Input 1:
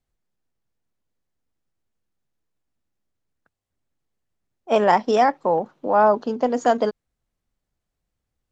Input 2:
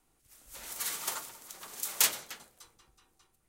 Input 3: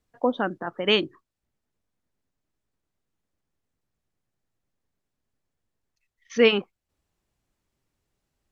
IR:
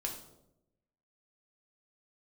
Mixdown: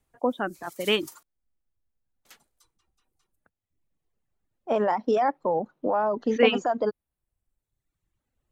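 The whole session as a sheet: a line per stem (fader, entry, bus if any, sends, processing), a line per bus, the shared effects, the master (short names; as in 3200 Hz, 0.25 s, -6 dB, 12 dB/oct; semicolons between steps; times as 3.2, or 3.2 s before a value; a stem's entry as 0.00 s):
+2.0 dB, 0.00 s, no send, high shelf 2800 Hz -10.5 dB; compressor, threshold -18 dBFS, peak gain reduction 6.5 dB; limiter -16.5 dBFS, peak gain reduction 5.5 dB
-8.0 dB, 0.00 s, muted 1.23–2.25, no send, dry
-2.0 dB, 0.00 s, no send, bell 5100 Hz -13.5 dB 0.43 oct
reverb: off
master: reverb removal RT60 1.2 s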